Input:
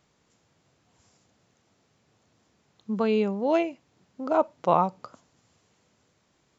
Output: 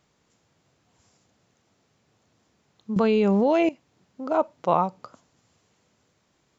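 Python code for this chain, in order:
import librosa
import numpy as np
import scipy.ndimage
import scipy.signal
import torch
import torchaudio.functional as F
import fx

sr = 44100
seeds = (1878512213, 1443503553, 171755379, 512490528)

y = fx.env_flatten(x, sr, amount_pct=100, at=(2.96, 3.69))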